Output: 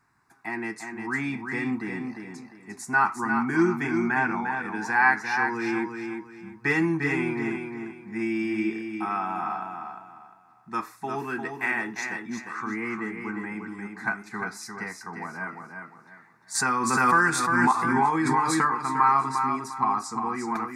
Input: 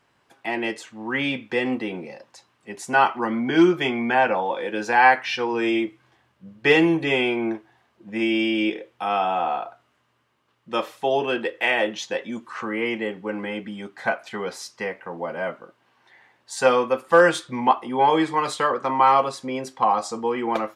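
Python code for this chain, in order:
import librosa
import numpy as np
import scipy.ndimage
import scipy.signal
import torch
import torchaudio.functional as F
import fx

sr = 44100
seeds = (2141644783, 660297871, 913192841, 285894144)

y = fx.dynamic_eq(x, sr, hz=660.0, q=1.8, threshold_db=-32.0, ratio=4.0, max_db=-6)
y = fx.fixed_phaser(y, sr, hz=1300.0, stages=4)
y = fx.echo_feedback(y, sr, ms=351, feedback_pct=29, wet_db=-6)
y = fx.pre_swell(y, sr, db_per_s=25.0, at=(16.54, 18.71), fade=0.02)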